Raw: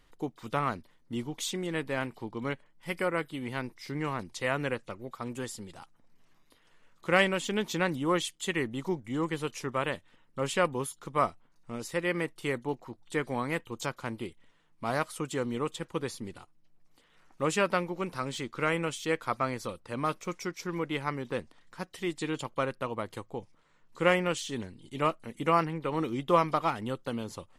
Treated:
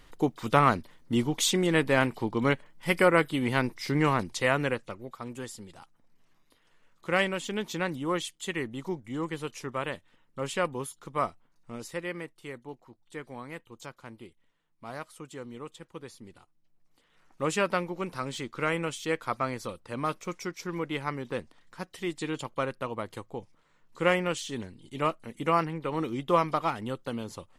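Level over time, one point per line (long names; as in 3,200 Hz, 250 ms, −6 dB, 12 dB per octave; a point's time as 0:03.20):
0:04.08 +8.5 dB
0:05.25 −2 dB
0:11.83 −2 dB
0:12.37 −9.5 dB
0:16.06 −9.5 dB
0:17.48 0 dB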